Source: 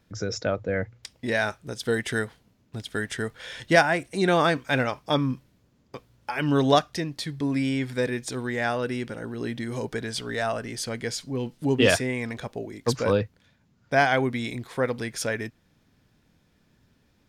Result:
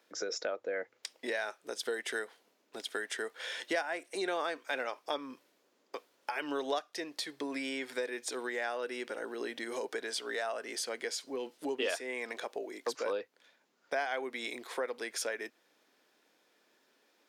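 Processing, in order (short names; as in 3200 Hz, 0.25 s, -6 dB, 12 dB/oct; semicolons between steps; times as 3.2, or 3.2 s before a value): HPF 360 Hz 24 dB/oct; compressor 3:1, threshold -35 dBFS, peak gain reduction 16.5 dB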